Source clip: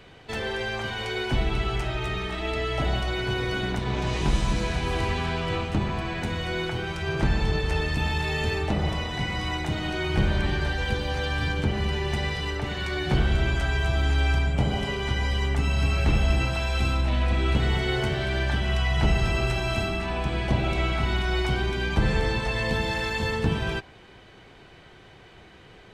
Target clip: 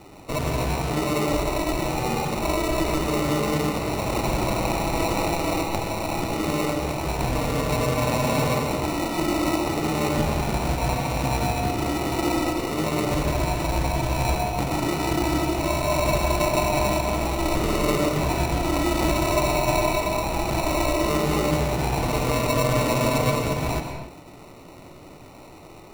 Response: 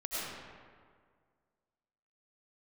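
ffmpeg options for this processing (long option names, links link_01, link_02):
-filter_complex "[0:a]tiltshelf=frequency=970:gain=-10,acrusher=samples=27:mix=1:aa=0.000001,asplit=2[link_01][link_02];[1:a]atrim=start_sample=2205,afade=type=out:start_time=0.32:duration=0.01,atrim=end_sample=14553,asetrate=38367,aresample=44100[link_03];[link_02][link_03]afir=irnorm=-1:irlink=0,volume=-6.5dB[link_04];[link_01][link_04]amix=inputs=2:normalize=0"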